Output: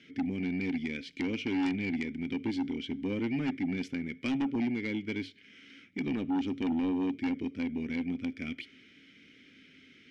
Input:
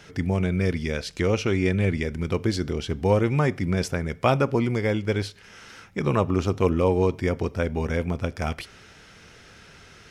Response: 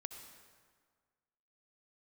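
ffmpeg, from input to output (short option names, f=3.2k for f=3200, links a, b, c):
-filter_complex "[0:a]asplit=3[a][b][c];[a]bandpass=f=270:t=q:w=8,volume=0dB[d];[b]bandpass=f=2.29k:t=q:w=8,volume=-6dB[e];[c]bandpass=f=3.01k:t=q:w=8,volume=-9dB[f];[d][e][f]amix=inputs=3:normalize=0,aeval=exprs='0.0944*(cos(1*acos(clip(val(0)/0.0944,-1,1)))-cos(1*PI/2))+0.0266*(cos(5*acos(clip(val(0)/0.0944,-1,1)))-cos(5*PI/2))':c=same,volume=-2dB"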